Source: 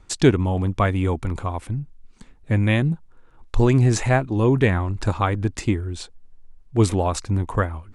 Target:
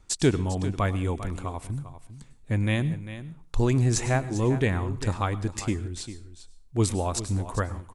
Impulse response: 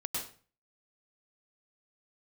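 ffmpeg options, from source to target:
-filter_complex "[0:a]bass=f=250:g=1,treble=f=4000:g=7,aecho=1:1:398:0.224,asplit=2[s0][s1];[1:a]atrim=start_sample=2205,highshelf=f=6600:g=11.5[s2];[s1][s2]afir=irnorm=-1:irlink=0,volume=0.112[s3];[s0][s3]amix=inputs=2:normalize=0,volume=0.422"

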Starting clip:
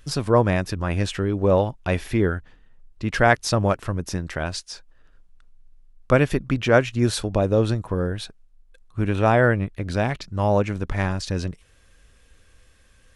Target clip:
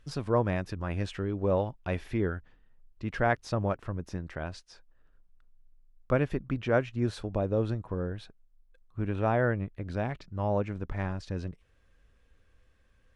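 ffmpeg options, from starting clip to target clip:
-af "asetnsamples=n=441:p=0,asendcmd='3.12 lowpass f 1800',lowpass=f=3200:p=1,volume=0.376"

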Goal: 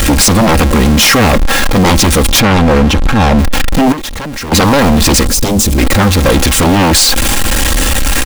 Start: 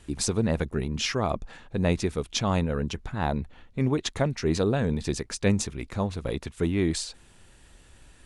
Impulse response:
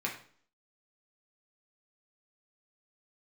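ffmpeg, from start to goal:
-filter_complex "[0:a]aeval=exprs='val(0)+0.5*0.0422*sgn(val(0))':c=same,aecho=1:1:3.7:0.62,aeval=exprs='0.355*sin(PI/2*4.47*val(0)/0.355)':c=same,asettb=1/sr,asplit=3[s0][s1][s2];[s0]atrim=end=2.404[s3];[s1]atrim=start=2.4:end=3.39,asetpts=PTS-STARTPTS,afade=t=in:d=0.004:c=qsin,afade=t=out:st=0.986:d=0.004:c=qsin,aemphasis=mode=reproduction:type=50kf[s4];[s2]atrim=start=3.386[s5];[s3][s4]acrossfade=d=0.004:c1=hsin:c2=qsin[s6];[s6][s5]acrossfade=d=0.004:c1=qsin:c2=hsin,asettb=1/sr,asplit=3[s7][s8][s9];[s7]atrim=end=3.924[s10];[s8]atrim=start=3.92:end=4.52,asetpts=PTS-STARTPTS,afade=t=in:d=0.004:c=qsin,afade=t=out:st=0.596:d=0.004:c=qsin,acompressor=threshold=0.0631:ratio=12[s11];[s9]atrim=start=4.516[s12];[s10][s11]acrossfade=d=0.004:c1=hsin:c2=qsin[s13];[s13][s12]acrossfade=d=0.004:c1=qsin:c2=hsin,asettb=1/sr,asplit=3[s14][s15][s16];[s14]atrim=end=5.274[s17];[s15]atrim=start=5.27:end=5.78,asetpts=PTS-STARTPTS,afade=t=in:d=0.004:c=qsin,afade=t=out:st=0.506:d=0.004:c=qsin,equalizer=f=1600:t=o:w=2.6:g=-12.5[s18];[s16]atrim=start=5.776[s19];[s17][s18]acrossfade=d=0.004:c1=hsin:c2=qsin[s20];[s20][s19]acrossfade=d=0.004:c1=qsin:c2=hsin,volume=1.68"

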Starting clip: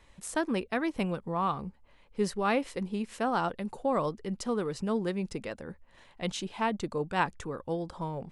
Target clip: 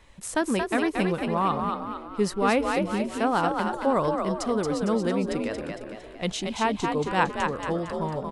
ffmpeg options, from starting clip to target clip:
-filter_complex "[0:a]asplit=7[s0][s1][s2][s3][s4][s5][s6];[s1]adelay=228,afreqshift=47,volume=0.596[s7];[s2]adelay=456,afreqshift=94,volume=0.279[s8];[s3]adelay=684,afreqshift=141,volume=0.132[s9];[s4]adelay=912,afreqshift=188,volume=0.0617[s10];[s5]adelay=1140,afreqshift=235,volume=0.0292[s11];[s6]adelay=1368,afreqshift=282,volume=0.0136[s12];[s0][s7][s8][s9][s10][s11][s12]amix=inputs=7:normalize=0,volume=1.68"

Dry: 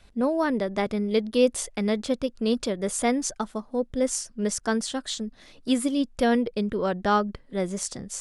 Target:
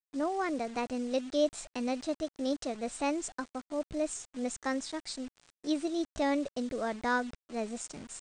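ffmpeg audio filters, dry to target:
-af "aresample=16000,acrusher=bits=6:mix=0:aa=0.000001,aresample=44100,asetrate=52444,aresample=44100,atempo=0.840896,volume=0.398"

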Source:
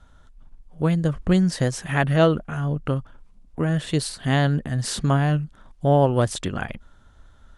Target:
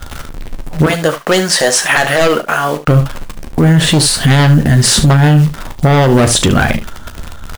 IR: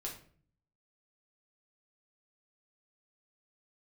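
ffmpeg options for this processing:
-filter_complex "[0:a]asettb=1/sr,asplit=3[s0][s1][s2];[s0]atrim=end=0.864[s3];[s1]atrim=start=0.86:end=2.88,asetpts=PTS-STARTPTS,afade=t=in:d=0.004:c=qsin,afade=t=out:st=2.016:d=0.004:c=qsin,highpass=600[s4];[s2]atrim=start=2.876[s5];[s3][s4]acrossfade=d=0.004:c1=hsin:c2=qsin[s6];[s6][s5]acrossfade=d=0.004:c1=qsin:c2=hsin,asoftclip=type=tanh:threshold=0.237,aeval=exprs='0.237*(cos(1*acos(clip(val(0)/0.237,-1,1)))-cos(1*PI/2))+0.0473*(cos(4*acos(clip(val(0)/0.237,-1,1)))-cos(4*PI/2))+0.0473*(cos(5*acos(clip(val(0)/0.237,-1,1)))-cos(5*PI/2))+0.0237*(cos(6*acos(clip(val(0)/0.237,-1,1)))-cos(6*PI/2))':c=same,acrusher=bits=8:dc=4:mix=0:aa=0.000001,aecho=1:1:13|37|73:0.316|0.211|0.2,alimiter=level_in=7.5:limit=0.891:release=50:level=0:latency=1,volume=0.891"

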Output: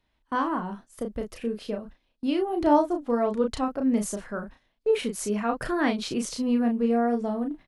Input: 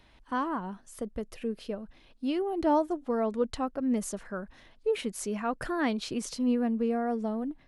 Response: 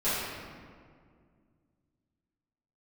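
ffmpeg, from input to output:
-filter_complex "[0:a]agate=range=0.126:threshold=0.00447:ratio=16:detection=peak,asplit=2[s0][s1];[s1]adelay=34,volume=0.562[s2];[s0][s2]amix=inputs=2:normalize=0,volume=1.41"

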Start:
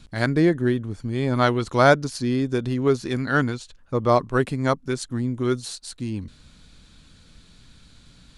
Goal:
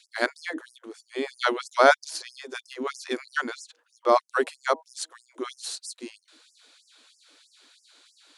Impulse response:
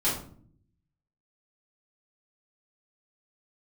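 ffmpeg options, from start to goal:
-af "bandreject=f=159.8:t=h:w=4,bandreject=f=319.6:t=h:w=4,bandreject=f=479.4:t=h:w=4,bandreject=f=639.2:t=h:w=4,bandreject=f=799:t=h:w=4,bandreject=f=958.8:t=h:w=4,afftfilt=real='re*gte(b*sr/1024,250*pow(5000/250,0.5+0.5*sin(2*PI*3.1*pts/sr)))':imag='im*gte(b*sr/1024,250*pow(5000/250,0.5+0.5*sin(2*PI*3.1*pts/sr)))':win_size=1024:overlap=0.75"

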